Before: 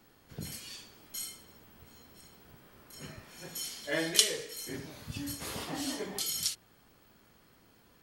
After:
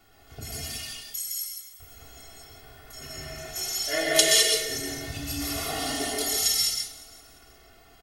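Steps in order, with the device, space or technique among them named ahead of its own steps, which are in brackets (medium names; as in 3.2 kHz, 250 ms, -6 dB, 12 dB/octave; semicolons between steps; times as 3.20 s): 0.81–1.80 s: pre-emphasis filter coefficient 0.9; microphone above a desk (comb 2.8 ms, depth 89%; reverberation RT60 0.35 s, pre-delay 118 ms, DRR 3.5 dB); comb 1.5 ms, depth 57%; feedback delay 175 ms, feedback 56%, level -17.5 dB; gated-style reverb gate 230 ms rising, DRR -1.5 dB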